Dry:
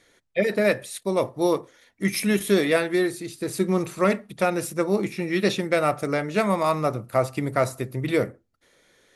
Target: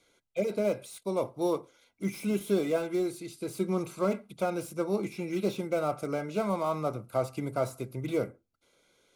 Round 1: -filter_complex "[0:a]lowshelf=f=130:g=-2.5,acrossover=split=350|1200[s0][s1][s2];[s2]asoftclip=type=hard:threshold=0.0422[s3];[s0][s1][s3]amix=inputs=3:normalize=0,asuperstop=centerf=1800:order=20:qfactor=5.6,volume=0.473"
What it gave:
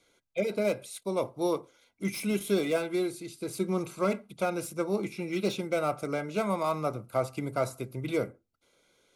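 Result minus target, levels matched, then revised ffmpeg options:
hard clipper: distortion -7 dB
-filter_complex "[0:a]lowshelf=f=130:g=-2.5,acrossover=split=350|1200[s0][s1][s2];[s2]asoftclip=type=hard:threshold=0.0141[s3];[s0][s1][s3]amix=inputs=3:normalize=0,asuperstop=centerf=1800:order=20:qfactor=5.6,volume=0.473"

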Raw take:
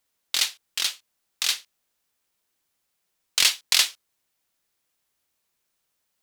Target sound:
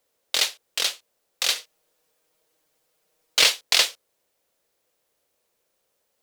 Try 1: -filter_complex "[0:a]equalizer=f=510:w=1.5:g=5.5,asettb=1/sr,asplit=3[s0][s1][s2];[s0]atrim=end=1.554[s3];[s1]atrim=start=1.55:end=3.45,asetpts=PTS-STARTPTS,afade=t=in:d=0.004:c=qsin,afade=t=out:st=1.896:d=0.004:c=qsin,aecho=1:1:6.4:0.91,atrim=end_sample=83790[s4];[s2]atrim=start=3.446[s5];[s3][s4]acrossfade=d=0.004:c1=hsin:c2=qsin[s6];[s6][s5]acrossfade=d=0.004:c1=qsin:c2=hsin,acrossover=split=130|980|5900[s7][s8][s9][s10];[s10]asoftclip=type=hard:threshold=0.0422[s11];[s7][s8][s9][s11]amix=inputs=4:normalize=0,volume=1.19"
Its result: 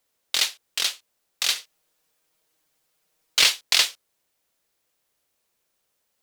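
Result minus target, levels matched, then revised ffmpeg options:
500 Hz band -6.5 dB
-filter_complex "[0:a]equalizer=f=510:w=1.5:g=14,asettb=1/sr,asplit=3[s0][s1][s2];[s0]atrim=end=1.554[s3];[s1]atrim=start=1.55:end=3.45,asetpts=PTS-STARTPTS,afade=t=in:d=0.004:c=qsin,afade=t=out:st=1.896:d=0.004:c=qsin,aecho=1:1:6.4:0.91,atrim=end_sample=83790[s4];[s2]atrim=start=3.446[s5];[s3][s4]acrossfade=d=0.004:c1=hsin:c2=qsin[s6];[s6][s5]acrossfade=d=0.004:c1=qsin:c2=hsin,acrossover=split=130|980|5900[s7][s8][s9][s10];[s10]asoftclip=type=hard:threshold=0.0422[s11];[s7][s8][s9][s11]amix=inputs=4:normalize=0,volume=1.19"

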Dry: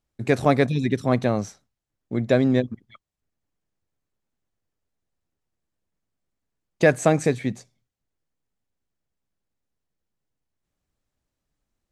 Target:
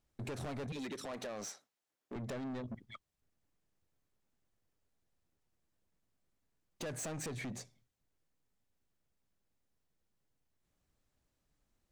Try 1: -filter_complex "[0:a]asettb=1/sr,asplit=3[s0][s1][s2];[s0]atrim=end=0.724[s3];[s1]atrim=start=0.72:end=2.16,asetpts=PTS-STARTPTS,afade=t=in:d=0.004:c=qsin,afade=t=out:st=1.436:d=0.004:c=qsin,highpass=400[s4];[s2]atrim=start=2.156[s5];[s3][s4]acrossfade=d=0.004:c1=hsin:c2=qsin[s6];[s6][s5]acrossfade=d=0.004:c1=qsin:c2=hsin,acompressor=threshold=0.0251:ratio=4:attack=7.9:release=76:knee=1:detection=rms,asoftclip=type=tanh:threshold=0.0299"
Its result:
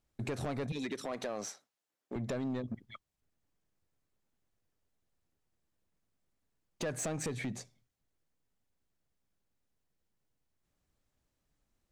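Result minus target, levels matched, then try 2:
saturation: distortion -6 dB
-filter_complex "[0:a]asettb=1/sr,asplit=3[s0][s1][s2];[s0]atrim=end=0.724[s3];[s1]atrim=start=0.72:end=2.16,asetpts=PTS-STARTPTS,afade=t=in:d=0.004:c=qsin,afade=t=out:st=1.436:d=0.004:c=qsin,highpass=400[s4];[s2]atrim=start=2.156[s5];[s3][s4]acrossfade=d=0.004:c1=hsin:c2=qsin[s6];[s6][s5]acrossfade=d=0.004:c1=qsin:c2=hsin,acompressor=threshold=0.0251:ratio=4:attack=7.9:release=76:knee=1:detection=rms,asoftclip=type=tanh:threshold=0.0119"

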